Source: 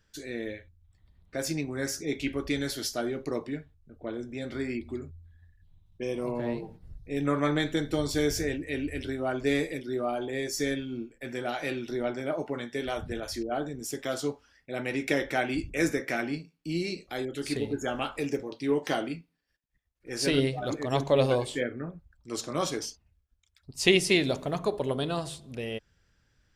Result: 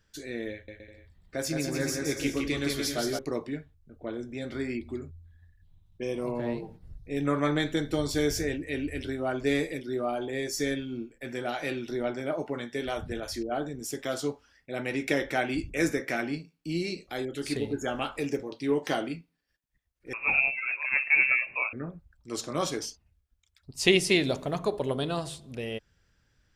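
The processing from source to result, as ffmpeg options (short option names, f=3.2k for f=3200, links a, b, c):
-filter_complex "[0:a]asettb=1/sr,asplit=3[a][b][c];[a]atrim=end=0.514[d];[b]atrim=start=0.51:end=3.19,asetpts=PTS-STARTPTS,afade=t=in:d=0.004:c=qsin,afade=t=out:st=2.676:d=0.004:c=qsin,aecho=1:1:170|289|372.3|430.6|471.4:0.631|0.398|0.251|0.158|0.1,atrim=end_sample=118188[e];[c]atrim=start=3.186[f];[d][e]acrossfade=d=0.004:c1=hsin:c2=qsin[g];[g][f]acrossfade=d=0.004:c1=qsin:c2=hsin,asettb=1/sr,asplit=3[h][i][j];[h]atrim=end=20.134[k];[i]atrim=start=20.13:end=21.73,asetpts=PTS-STARTPTS,afade=t=in:d=0.004:c=qsin,afade=t=out:st=1.596:d=0.004:c=qsin,lowpass=f=2.4k:t=q:w=0.5098,lowpass=f=2.4k:t=q:w=0.6013,lowpass=f=2.4k:t=q:w=0.9,lowpass=f=2.4k:t=q:w=2.563,afreqshift=-2800[l];[j]atrim=start=21.726[m];[k][l]acrossfade=d=0.004:c1=hsin:c2=qsin[n];[n][m]acrossfade=d=0.004:c1=qsin:c2=hsin"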